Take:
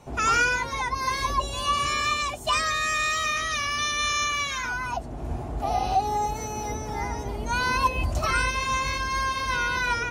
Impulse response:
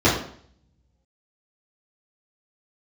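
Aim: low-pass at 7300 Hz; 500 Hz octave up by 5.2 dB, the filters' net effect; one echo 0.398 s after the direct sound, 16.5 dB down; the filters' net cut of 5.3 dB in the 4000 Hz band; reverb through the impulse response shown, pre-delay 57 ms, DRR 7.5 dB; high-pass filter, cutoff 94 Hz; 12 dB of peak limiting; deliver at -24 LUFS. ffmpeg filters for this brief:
-filter_complex "[0:a]highpass=94,lowpass=7.3k,equalizer=f=500:t=o:g=6.5,equalizer=f=4k:t=o:g=-7,alimiter=limit=-21.5dB:level=0:latency=1,aecho=1:1:398:0.15,asplit=2[a][b];[1:a]atrim=start_sample=2205,adelay=57[c];[b][c]afir=irnorm=-1:irlink=0,volume=-28dB[d];[a][d]amix=inputs=2:normalize=0,volume=4.5dB"

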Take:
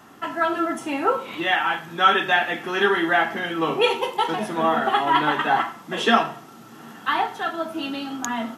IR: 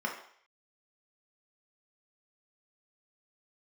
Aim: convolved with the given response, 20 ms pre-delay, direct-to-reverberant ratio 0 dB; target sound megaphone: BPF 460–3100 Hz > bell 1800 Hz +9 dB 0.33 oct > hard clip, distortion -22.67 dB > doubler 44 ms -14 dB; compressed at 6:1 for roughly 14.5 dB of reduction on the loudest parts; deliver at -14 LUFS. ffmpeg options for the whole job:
-filter_complex "[0:a]acompressor=threshold=-28dB:ratio=6,asplit=2[a][b];[1:a]atrim=start_sample=2205,adelay=20[c];[b][c]afir=irnorm=-1:irlink=0,volume=-6.5dB[d];[a][d]amix=inputs=2:normalize=0,highpass=460,lowpass=3.1k,equalizer=f=1.8k:t=o:w=0.33:g=9,asoftclip=type=hard:threshold=-18dB,asplit=2[e][f];[f]adelay=44,volume=-14dB[g];[e][g]amix=inputs=2:normalize=0,volume=13dB"

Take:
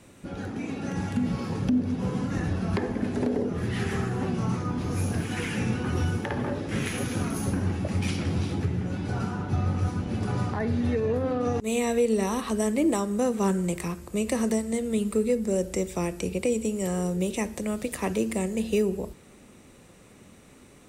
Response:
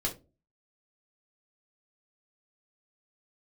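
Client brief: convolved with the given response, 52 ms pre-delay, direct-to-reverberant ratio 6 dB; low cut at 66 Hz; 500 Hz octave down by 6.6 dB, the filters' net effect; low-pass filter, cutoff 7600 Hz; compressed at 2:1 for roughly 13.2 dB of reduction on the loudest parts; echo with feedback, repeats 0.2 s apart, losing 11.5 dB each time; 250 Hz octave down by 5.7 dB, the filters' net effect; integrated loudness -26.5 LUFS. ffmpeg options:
-filter_complex "[0:a]highpass=66,lowpass=7.6k,equalizer=f=250:t=o:g=-6,equalizer=f=500:t=o:g=-6,acompressor=threshold=-50dB:ratio=2,aecho=1:1:200|400|600:0.266|0.0718|0.0194,asplit=2[a][b];[1:a]atrim=start_sample=2205,adelay=52[c];[b][c]afir=irnorm=-1:irlink=0,volume=-10.5dB[d];[a][d]amix=inputs=2:normalize=0,volume=15dB"

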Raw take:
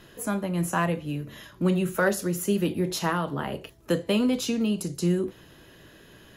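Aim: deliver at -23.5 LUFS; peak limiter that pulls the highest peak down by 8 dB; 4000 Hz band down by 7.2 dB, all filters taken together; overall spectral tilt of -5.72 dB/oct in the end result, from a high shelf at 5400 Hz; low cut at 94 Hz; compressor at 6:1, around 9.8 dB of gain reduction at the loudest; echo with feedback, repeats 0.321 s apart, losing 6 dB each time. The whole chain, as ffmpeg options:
-af "highpass=94,equalizer=f=4k:t=o:g=-8,highshelf=f=5.4k:g=-6,acompressor=threshold=-30dB:ratio=6,alimiter=level_in=3.5dB:limit=-24dB:level=0:latency=1,volume=-3.5dB,aecho=1:1:321|642|963|1284|1605|1926:0.501|0.251|0.125|0.0626|0.0313|0.0157,volume=13dB"

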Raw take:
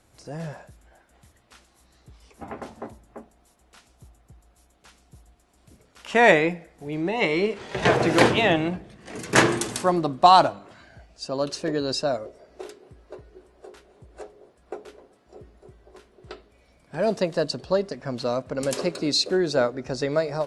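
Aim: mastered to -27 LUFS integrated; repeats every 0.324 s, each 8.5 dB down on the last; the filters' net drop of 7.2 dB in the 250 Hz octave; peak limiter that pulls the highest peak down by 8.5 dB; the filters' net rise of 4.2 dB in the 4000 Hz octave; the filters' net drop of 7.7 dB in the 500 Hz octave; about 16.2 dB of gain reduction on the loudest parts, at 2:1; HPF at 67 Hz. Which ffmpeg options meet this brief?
-af "highpass=67,equalizer=f=250:t=o:g=-7,equalizer=f=500:t=o:g=-8.5,equalizer=f=4k:t=o:g=5,acompressor=threshold=-43dB:ratio=2,alimiter=level_in=2dB:limit=-24dB:level=0:latency=1,volume=-2dB,aecho=1:1:324|648|972|1296:0.376|0.143|0.0543|0.0206,volume=13dB"

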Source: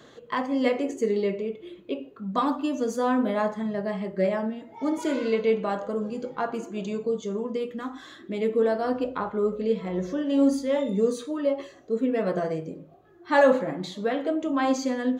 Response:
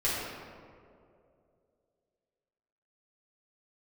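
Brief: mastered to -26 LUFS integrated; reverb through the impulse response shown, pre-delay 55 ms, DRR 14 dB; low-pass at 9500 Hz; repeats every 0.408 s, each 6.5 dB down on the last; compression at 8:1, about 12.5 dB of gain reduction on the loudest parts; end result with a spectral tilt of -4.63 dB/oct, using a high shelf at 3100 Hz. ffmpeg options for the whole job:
-filter_complex "[0:a]lowpass=9.5k,highshelf=f=3.1k:g=6.5,acompressor=threshold=-26dB:ratio=8,aecho=1:1:408|816|1224|1632|2040|2448:0.473|0.222|0.105|0.0491|0.0231|0.0109,asplit=2[a][b];[1:a]atrim=start_sample=2205,adelay=55[c];[b][c]afir=irnorm=-1:irlink=0,volume=-24dB[d];[a][d]amix=inputs=2:normalize=0,volume=4.5dB"

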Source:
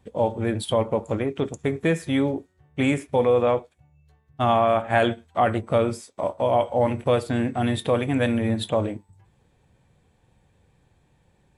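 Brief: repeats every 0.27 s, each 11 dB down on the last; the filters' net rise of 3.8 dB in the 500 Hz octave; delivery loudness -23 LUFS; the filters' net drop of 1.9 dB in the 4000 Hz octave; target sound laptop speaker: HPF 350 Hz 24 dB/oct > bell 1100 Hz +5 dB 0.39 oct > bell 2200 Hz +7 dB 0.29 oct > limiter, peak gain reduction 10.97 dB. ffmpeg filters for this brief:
-af "highpass=f=350:w=0.5412,highpass=f=350:w=1.3066,equalizer=f=500:t=o:g=4.5,equalizer=f=1.1k:t=o:w=0.39:g=5,equalizer=f=2.2k:t=o:w=0.29:g=7,equalizer=f=4k:t=o:g=-3,aecho=1:1:270|540|810:0.282|0.0789|0.0221,volume=4dB,alimiter=limit=-13dB:level=0:latency=1"

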